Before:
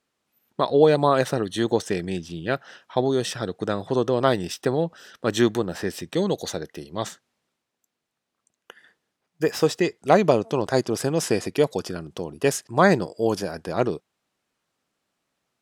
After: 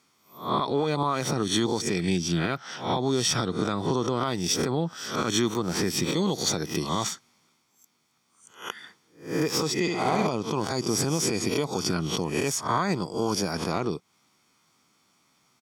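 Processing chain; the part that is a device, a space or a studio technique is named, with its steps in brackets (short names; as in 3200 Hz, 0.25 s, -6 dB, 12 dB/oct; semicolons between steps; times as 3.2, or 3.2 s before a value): spectral swells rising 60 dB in 0.37 s; broadcast voice chain (HPF 97 Hz; de-esser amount 45%; compressor 4:1, threshold -31 dBFS, peak gain reduction 18 dB; bell 5600 Hz +6 dB 0.59 oct; limiter -23 dBFS, peak gain reduction 7.5 dB); comb 0.9 ms, depth 52%; 9.8–10.27 flutter echo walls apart 11.7 m, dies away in 1.1 s; gain +8.5 dB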